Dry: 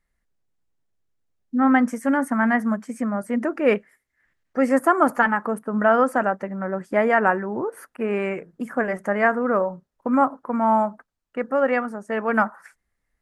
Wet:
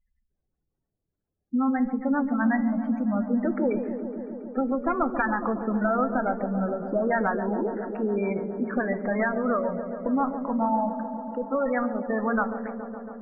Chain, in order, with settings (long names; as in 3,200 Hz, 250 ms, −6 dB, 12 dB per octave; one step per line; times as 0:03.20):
one-sided soft clipper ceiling −18.5 dBFS
low-pass filter 2,500 Hz 12 dB per octave
gate on every frequency bin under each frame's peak −15 dB strong
dynamic equaliser 490 Hz, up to −5 dB, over −34 dBFS, Q 1.4
downward compressor, threshold −24 dBFS, peak gain reduction 7.5 dB
flanger 0.97 Hz, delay 9.3 ms, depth 3.4 ms, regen −84%
delay with a low-pass on its return 139 ms, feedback 82%, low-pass 780 Hz, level −8 dB
level +7 dB